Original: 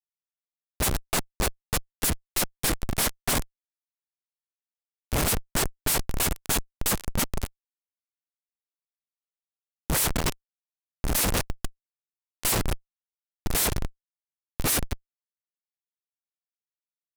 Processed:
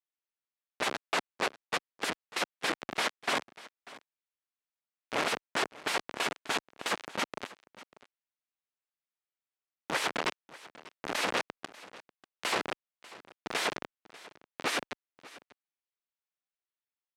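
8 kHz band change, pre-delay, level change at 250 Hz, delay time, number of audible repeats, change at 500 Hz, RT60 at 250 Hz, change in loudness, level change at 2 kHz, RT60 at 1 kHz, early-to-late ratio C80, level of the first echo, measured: -14.5 dB, no reverb, -8.5 dB, 592 ms, 1, -2.5 dB, no reverb, -6.5 dB, +0.5 dB, no reverb, no reverb, -19.5 dB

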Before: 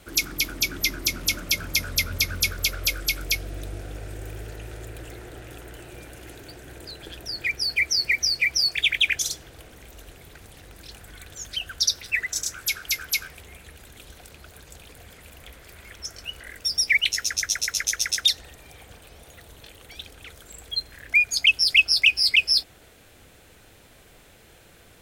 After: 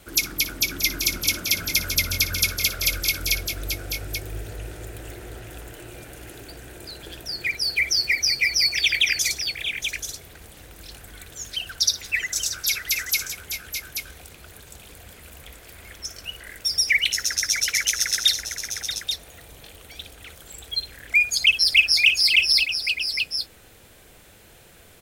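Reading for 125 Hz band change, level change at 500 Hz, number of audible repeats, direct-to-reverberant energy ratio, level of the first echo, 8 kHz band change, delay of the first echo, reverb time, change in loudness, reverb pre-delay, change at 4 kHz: +1.0 dB, +1.0 dB, 3, no reverb, -14.0 dB, +3.0 dB, 58 ms, no reverb, +1.0 dB, no reverb, +2.0 dB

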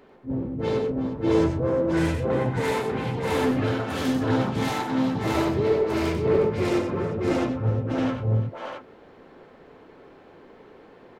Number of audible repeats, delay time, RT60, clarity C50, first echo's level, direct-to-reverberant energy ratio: 5, 94 ms, no reverb, no reverb, -6.0 dB, no reverb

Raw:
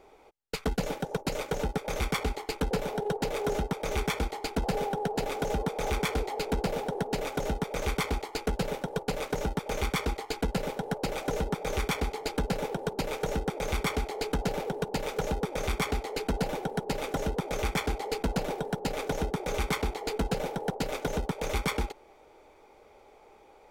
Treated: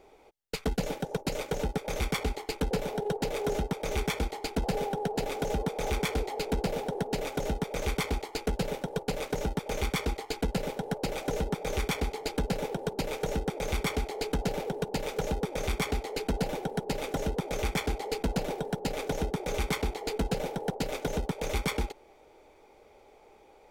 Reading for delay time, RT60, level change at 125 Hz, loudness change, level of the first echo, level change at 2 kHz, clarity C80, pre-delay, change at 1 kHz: no echo, no reverb, 0.0 dB, -0.5 dB, no echo, -1.5 dB, no reverb, no reverb, -2.0 dB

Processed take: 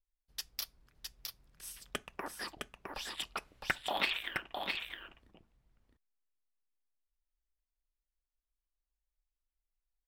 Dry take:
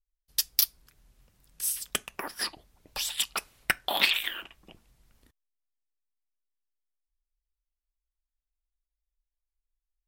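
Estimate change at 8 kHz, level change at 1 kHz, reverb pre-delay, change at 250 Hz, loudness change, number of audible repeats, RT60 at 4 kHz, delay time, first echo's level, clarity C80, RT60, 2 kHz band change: -15.5 dB, -3.5 dB, no reverb, -2.0 dB, -11.0 dB, 1, no reverb, 661 ms, -4.5 dB, no reverb, no reverb, -6.0 dB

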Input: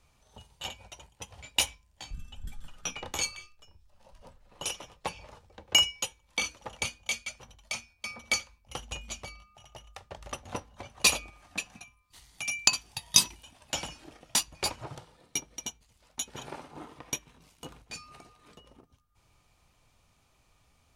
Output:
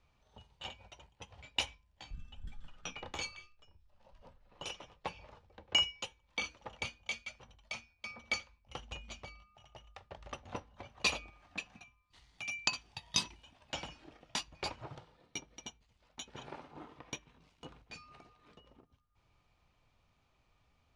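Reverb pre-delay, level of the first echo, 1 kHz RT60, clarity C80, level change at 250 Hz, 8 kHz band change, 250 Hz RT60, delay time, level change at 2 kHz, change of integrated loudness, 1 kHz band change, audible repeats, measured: no reverb, no echo, no reverb, no reverb, -5.5 dB, -15.0 dB, no reverb, no echo, -6.0 dB, -9.0 dB, -5.5 dB, no echo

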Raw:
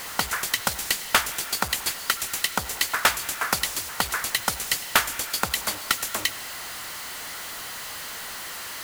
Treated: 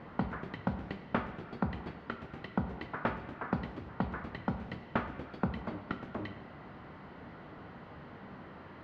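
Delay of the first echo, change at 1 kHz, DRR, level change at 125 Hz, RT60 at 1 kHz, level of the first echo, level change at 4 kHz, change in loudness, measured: no echo, -11.0 dB, 8.0 dB, +3.5 dB, 0.75 s, no echo, -28.5 dB, -14.0 dB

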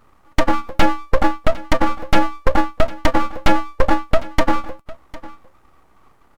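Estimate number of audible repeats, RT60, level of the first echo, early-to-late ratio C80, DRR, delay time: 1, no reverb, -19.0 dB, no reverb, no reverb, 754 ms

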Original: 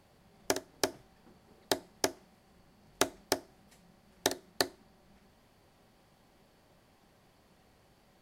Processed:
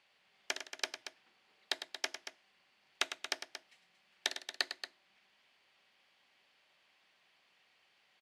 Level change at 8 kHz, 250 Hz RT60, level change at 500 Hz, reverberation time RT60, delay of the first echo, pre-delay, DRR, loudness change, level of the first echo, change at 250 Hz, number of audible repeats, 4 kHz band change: -7.5 dB, no reverb, -14.5 dB, no reverb, 103 ms, no reverb, no reverb, -5.5 dB, -10.0 dB, -19.0 dB, 2, -1.0 dB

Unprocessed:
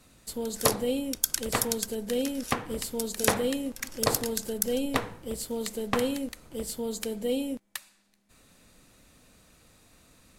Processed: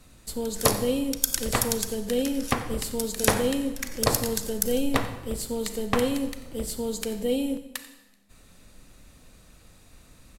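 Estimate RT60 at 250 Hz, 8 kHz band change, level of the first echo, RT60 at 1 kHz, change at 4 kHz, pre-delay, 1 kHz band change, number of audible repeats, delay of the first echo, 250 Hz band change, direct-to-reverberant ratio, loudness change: 1.0 s, +2.5 dB, -17.5 dB, 0.95 s, +2.5 dB, 32 ms, +2.5 dB, 1, 90 ms, +3.5 dB, 10.0 dB, +3.0 dB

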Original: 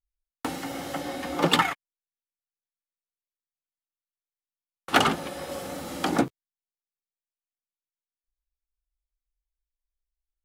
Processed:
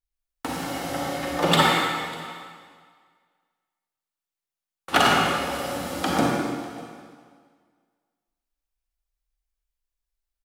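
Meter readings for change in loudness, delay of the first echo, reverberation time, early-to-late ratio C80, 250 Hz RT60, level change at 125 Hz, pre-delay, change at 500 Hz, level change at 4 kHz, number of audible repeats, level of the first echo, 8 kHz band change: +3.5 dB, 598 ms, 1.9 s, 0.0 dB, 1.8 s, +5.5 dB, 34 ms, +4.5 dB, +4.5 dB, 1, -21.5 dB, +4.5 dB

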